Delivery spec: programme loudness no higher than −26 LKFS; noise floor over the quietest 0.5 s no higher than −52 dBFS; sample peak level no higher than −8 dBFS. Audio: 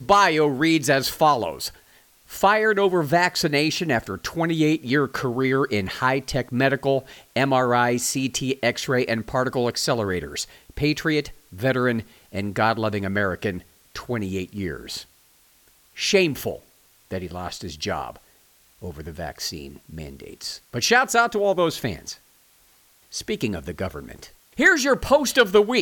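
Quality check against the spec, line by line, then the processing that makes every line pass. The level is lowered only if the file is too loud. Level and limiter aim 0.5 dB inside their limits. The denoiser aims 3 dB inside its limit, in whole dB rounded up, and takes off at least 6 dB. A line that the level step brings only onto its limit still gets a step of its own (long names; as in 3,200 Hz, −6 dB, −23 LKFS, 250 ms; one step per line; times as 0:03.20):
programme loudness −22.0 LKFS: out of spec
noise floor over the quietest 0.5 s −58 dBFS: in spec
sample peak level −5.0 dBFS: out of spec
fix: level −4.5 dB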